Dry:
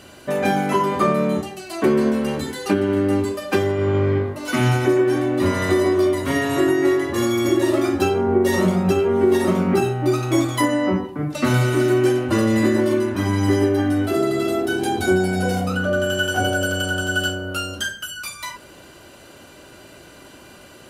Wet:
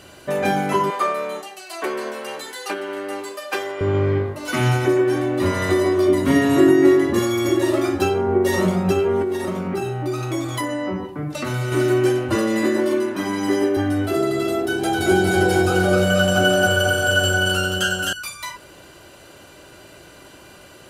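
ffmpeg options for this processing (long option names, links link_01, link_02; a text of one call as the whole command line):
ffmpeg -i in.wav -filter_complex "[0:a]asettb=1/sr,asplit=3[link_01][link_02][link_03];[link_01]atrim=end=0.904[link_04];[link_02]atrim=start=0.9:end=3.81,asetpts=PTS-STARTPTS,afade=type=in:duration=0.004:curve=qsin,afade=type=out:start_time=2.906:duration=0.004:curve=qsin,highpass=610[link_05];[link_03]atrim=start=3.806[link_06];[link_04][link_05]acrossfade=duration=0.004:curve1=hsin:curve2=qsin[link_07];[link_07][link_06]acrossfade=duration=0.004:curve1=qsin:curve2=hsin,asettb=1/sr,asplit=3[link_08][link_09][link_10];[link_08]atrim=end=6.084[link_11];[link_09]atrim=start=6.08:end=7.19,asetpts=PTS-STARTPTS,afade=type=in:duration=0.004:curve=qsin,afade=type=out:start_time=1.106:duration=0.004:curve=qsin,equalizer=frequency=230:width=1.4:gain=12.5[link_12];[link_10]atrim=start=7.186[link_13];[link_11][link_12]acrossfade=duration=0.004:curve1=hsin:curve2=qsin[link_14];[link_14][link_13]acrossfade=duration=0.004:curve1=qsin:curve2=hsin,asettb=1/sr,asplit=3[link_15][link_16][link_17];[link_15]atrim=end=9.224[link_18];[link_16]atrim=start=9.22:end=11.72,asetpts=PTS-STARTPTS,afade=type=in:duration=0.004:curve=qsin,afade=type=out:start_time=2.496:duration=0.004:curve=qsin,acompressor=threshold=-22dB:ratio=2.5:attack=3.2:release=140:knee=1:detection=peak[link_19];[link_17]atrim=start=11.716[link_20];[link_18][link_19]acrossfade=duration=0.004:curve1=hsin:curve2=qsin[link_21];[link_21][link_20]acrossfade=duration=0.004:curve1=qsin:curve2=hsin,asettb=1/sr,asplit=3[link_22][link_23][link_24];[link_22]atrim=end=12.354[link_25];[link_23]atrim=start=12.35:end=13.77,asetpts=PTS-STARTPTS,afade=type=in:duration=0.004:curve=qsin,afade=type=out:start_time=1.416:duration=0.004:curve=qsin,highpass=frequency=170:width=0.5412,highpass=frequency=170:width=1.3066[link_26];[link_24]atrim=start=13.766[link_27];[link_25][link_26]acrossfade=duration=0.004:curve1=hsin:curve2=qsin[link_28];[link_28][link_27]acrossfade=duration=0.004:curve1=qsin:curve2=hsin,asettb=1/sr,asplit=3[link_29][link_30][link_31];[link_29]atrim=end=14.584[link_32];[link_30]atrim=start=14.58:end=18.13,asetpts=PTS-STARTPTS,afade=type=in:duration=0.004:curve=qsin,afade=type=out:start_time=3.546:duration=0.004:curve=qsin,aecho=1:1:260|481|668.8|828.5|964.2:0.794|0.631|0.501|0.398|0.316,atrim=end_sample=156555[link_33];[link_31]atrim=start=18.126[link_34];[link_32][link_33]acrossfade=duration=0.004:curve1=hsin:curve2=qsin[link_35];[link_35][link_34]acrossfade=duration=0.004:curve1=qsin:curve2=hsin,equalizer=frequency=240:width_type=o:width=0.39:gain=-5.5" out.wav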